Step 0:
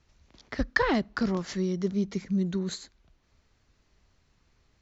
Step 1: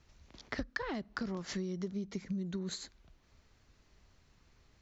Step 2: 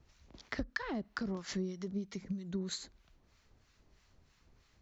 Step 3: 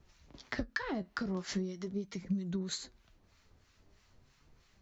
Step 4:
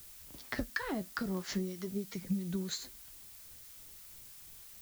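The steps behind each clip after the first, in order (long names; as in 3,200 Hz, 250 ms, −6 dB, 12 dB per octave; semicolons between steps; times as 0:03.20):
downward compressor 16 to 1, threshold −35 dBFS, peak gain reduction 17.5 dB; level +1 dB
two-band tremolo in antiphase 3.1 Hz, depth 70%, crossover 960 Hz; level +2 dB
flanger 0.42 Hz, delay 5 ms, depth 7 ms, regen +58%; level +6 dB
background noise blue −53 dBFS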